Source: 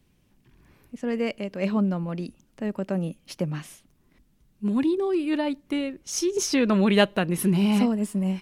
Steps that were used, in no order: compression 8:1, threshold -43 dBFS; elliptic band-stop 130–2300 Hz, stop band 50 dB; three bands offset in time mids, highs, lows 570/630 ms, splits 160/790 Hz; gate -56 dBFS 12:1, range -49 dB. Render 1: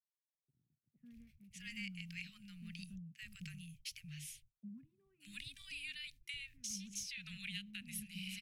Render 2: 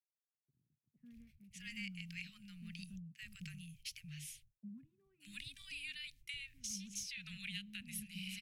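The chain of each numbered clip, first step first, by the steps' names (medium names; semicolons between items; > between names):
elliptic band-stop > compression > gate > three bands offset in time; elliptic band-stop > gate > compression > three bands offset in time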